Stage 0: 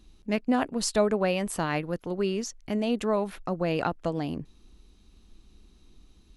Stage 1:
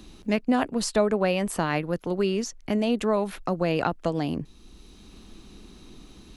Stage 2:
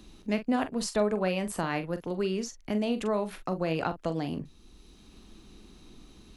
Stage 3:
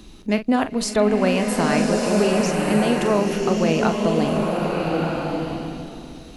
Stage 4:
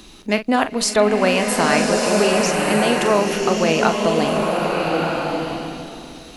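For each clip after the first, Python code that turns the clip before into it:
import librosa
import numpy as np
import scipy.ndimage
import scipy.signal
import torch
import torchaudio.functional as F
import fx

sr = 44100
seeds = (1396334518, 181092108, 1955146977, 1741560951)

y1 = fx.band_squash(x, sr, depth_pct=40)
y1 = y1 * 10.0 ** (2.5 / 20.0)
y2 = fx.doubler(y1, sr, ms=43.0, db=-10.5)
y2 = y2 * 10.0 ** (-5.0 / 20.0)
y3 = fx.rev_bloom(y2, sr, seeds[0], attack_ms=1270, drr_db=0.0)
y3 = y3 * 10.0 ** (8.0 / 20.0)
y4 = fx.low_shelf(y3, sr, hz=370.0, db=-10.5)
y4 = y4 * 10.0 ** (6.5 / 20.0)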